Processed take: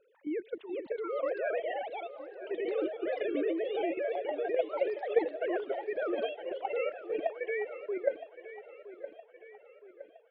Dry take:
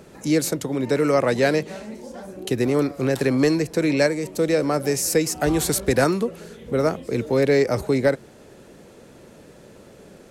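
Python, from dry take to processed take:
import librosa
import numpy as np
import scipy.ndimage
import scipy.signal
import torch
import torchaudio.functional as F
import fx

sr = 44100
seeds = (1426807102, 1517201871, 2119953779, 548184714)

p1 = fx.sine_speech(x, sr)
p2 = fx.tilt_shelf(p1, sr, db=-9.5, hz=1100.0, at=(7.24, 7.8))
p3 = fx.level_steps(p2, sr, step_db=12)
p4 = fx.echo_pitch(p3, sr, ms=470, semitones=3, count=2, db_per_echo=-3.0)
p5 = fx.graphic_eq_10(p4, sr, hz=(250, 1000, 2000), db=(-11, 4, -4), at=(0.92, 1.42), fade=0.02)
p6 = p5 + fx.echo_feedback(p5, sr, ms=966, feedback_pct=50, wet_db=-13.5, dry=0)
y = p6 * 10.0 ** (-8.5 / 20.0)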